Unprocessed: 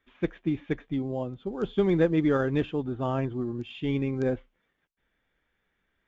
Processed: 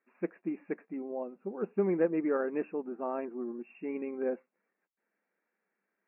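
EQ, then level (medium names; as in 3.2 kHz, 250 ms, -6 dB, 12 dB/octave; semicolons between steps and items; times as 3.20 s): brick-wall FIR band-pass 180–2800 Hz; peaking EQ 270 Hz -6.5 dB 0.47 oct; treble shelf 2 kHz -11.5 dB; -2.5 dB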